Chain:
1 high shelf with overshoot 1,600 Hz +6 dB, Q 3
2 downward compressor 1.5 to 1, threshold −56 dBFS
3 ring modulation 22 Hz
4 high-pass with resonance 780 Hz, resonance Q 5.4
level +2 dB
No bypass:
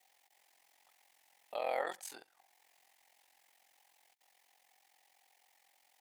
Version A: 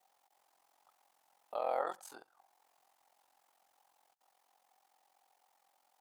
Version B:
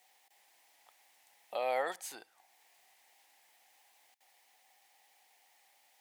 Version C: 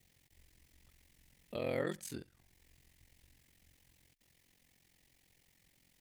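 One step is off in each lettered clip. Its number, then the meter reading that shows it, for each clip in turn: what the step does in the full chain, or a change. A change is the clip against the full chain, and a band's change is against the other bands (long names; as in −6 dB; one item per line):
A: 1, 1 kHz band +8.0 dB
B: 3, change in crest factor −3.0 dB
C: 4, 250 Hz band +16.0 dB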